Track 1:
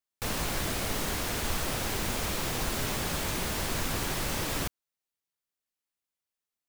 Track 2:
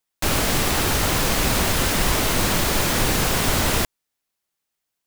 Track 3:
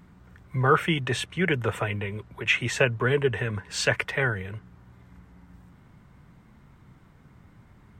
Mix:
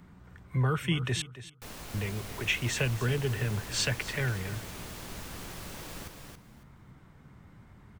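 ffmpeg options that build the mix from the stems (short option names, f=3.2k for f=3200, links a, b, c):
-filter_complex "[0:a]adelay=1400,volume=-12.5dB,asplit=2[a][b];[b]volume=-5dB[c];[2:a]acrossover=split=240|3000[d][e][f];[e]acompressor=threshold=-39dB:ratio=2.5[g];[d][g][f]amix=inputs=3:normalize=0,volume=-0.5dB,asplit=3[h][i][j];[h]atrim=end=1.22,asetpts=PTS-STARTPTS,afade=t=out:st=1.216:d=0.004:c=hsin[k];[i]atrim=start=1.22:end=1.94,asetpts=PTS-STARTPTS,volume=0[l];[j]atrim=start=1.94,asetpts=PTS-STARTPTS,afade=t=in:d=0.004:c=hsin[m];[k][l][m]concat=n=3:v=0:a=1,asplit=2[n][o];[o]volume=-15dB[p];[c][p]amix=inputs=2:normalize=0,aecho=0:1:278|556|834:1|0.2|0.04[q];[a][n][q]amix=inputs=3:normalize=0"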